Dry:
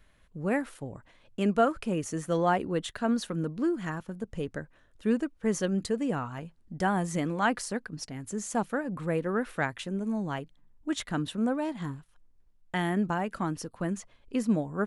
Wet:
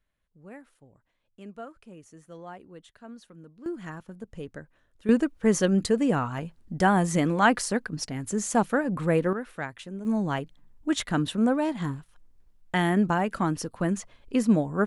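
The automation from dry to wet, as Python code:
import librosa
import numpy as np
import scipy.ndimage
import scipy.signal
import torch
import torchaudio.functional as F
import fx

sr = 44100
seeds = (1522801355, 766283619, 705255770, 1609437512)

y = fx.gain(x, sr, db=fx.steps((0.0, -17.0), (3.66, -4.5), (5.09, 6.0), (9.33, -4.5), (10.05, 5.0)))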